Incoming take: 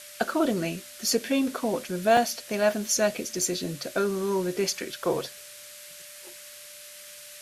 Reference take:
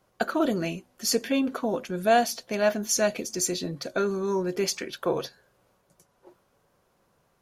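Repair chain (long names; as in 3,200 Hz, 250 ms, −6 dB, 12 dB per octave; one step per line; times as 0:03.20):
notch filter 590 Hz, Q 30
repair the gap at 0:02.17/0:03.42, 2.6 ms
noise reduction from a noise print 23 dB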